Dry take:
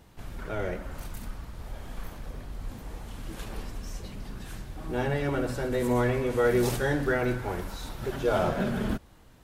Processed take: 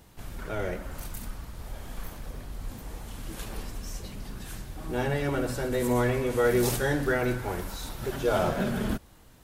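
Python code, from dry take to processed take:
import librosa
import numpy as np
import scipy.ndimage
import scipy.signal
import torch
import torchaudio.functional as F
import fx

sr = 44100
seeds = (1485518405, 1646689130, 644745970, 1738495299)

y = fx.high_shelf(x, sr, hz=5800.0, db=7.5)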